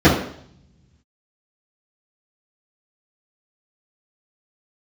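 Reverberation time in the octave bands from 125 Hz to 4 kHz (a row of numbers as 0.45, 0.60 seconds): 1.9, 0.85, 0.65, 0.65, 0.60, 0.70 seconds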